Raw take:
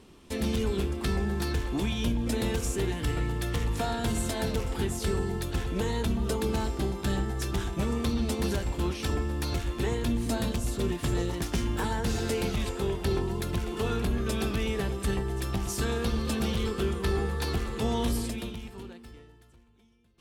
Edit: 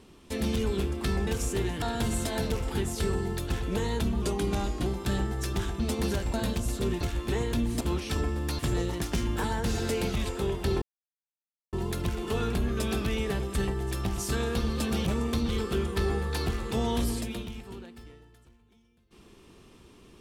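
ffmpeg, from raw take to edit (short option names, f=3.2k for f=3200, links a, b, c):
-filter_complex "[0:a]asplit=13[a][b][c][d][e][f][g][h][i][j][k][l][m];[a]atrim=end=1.272[n];[b]atrim=start=2.498:end=3.052[o];[c]atrim=start=3.858:end=6.264[p];[d]atrim=start=6.26:end=6.84,asetpts=PTS-STARTPTS,asetrate=40131,aresample=44100[q];[e]atrim=start=6.836:end=7.782[r];[f]atrim=start=8.198:end=8.742[s];[g]atrim=start=10.318:end=10.992[t];[h]atrim=start=9.518:end=10.322[u];[i]atrim=start=8.738:end=9.522[v];[j]atrim=start=10.988:end=13.22,asetpts=PTS-STARTPTS,afade=t=out:st=2.228:d=0.004:c=hsin,apad=pad_dur=0.91[w];[k]atrim=start=13.22:end=16.562,asetpts=PTS-STARTPTS,afade=t=in:d=0.004:c=hsin[x];[l]atrim=start=7.778:end=8.202[y];[m]atrim=start=16.558[z];[n][o]acrossfade=d=0.004:c1=hsin:c2=hsin[aa];[aa][p]acrossfade=d=0.004:c1=hsin:c2=hsin[ab];[ab][q]acrossfade=d=0.004:c1=hsin:c2=hsin[ac];[ac][r]acrossfade=d=0.004:c1=hsin:c2=hsin[ad];[ad][s]acrossfade=d=0.004:c1=hsin:c2=hsin[ae];[ae][t]acrossfade=d=0.004:c1=hsin:c2=hsin[af];[af][u]acrossfade=d=0.004:c1=hsin:c2=hsin[ag];[ag][v]acrossfade=d=0.004:c1=hsin:c2=hsin[ah];[w][x]concat=n=2:v=0:a=1[ai];[ah][ai]acrossfade=d=0.004:c1=hsin:c2=hsin[aj];[aj][y]acrossfade=d=0.004:c1=hsin:c2=hsin[ak];[ak][z]acrossfade=d=0.004:c1=hsin:c2=hsin"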